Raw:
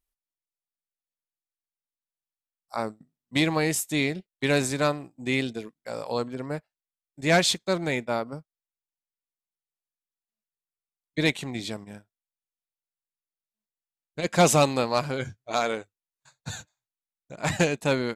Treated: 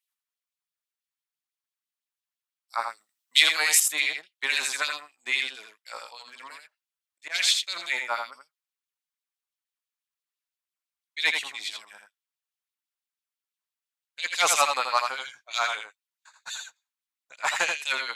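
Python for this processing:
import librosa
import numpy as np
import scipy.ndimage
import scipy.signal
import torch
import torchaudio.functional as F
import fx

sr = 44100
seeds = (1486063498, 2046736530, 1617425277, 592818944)

y = fx.high_shelf(x, sr, hz=3100.0, db=10.5, at=(2.89, 3.8))
y = fx.auto_swell(y, sr, attack_ms=217.0, at=(6.08, 7.34), fade=0.02)
y = fx.filter_lfo_highpass(y, sr, shape='sine', hz=6.0, low_hz=990.0, high_hz=3400.0, q=2.2)
y = y + 10.0 ** (-5.5 / 20.0) * np.pad(y, (int(82 * sr / 1000.0), 0))[:len(y)]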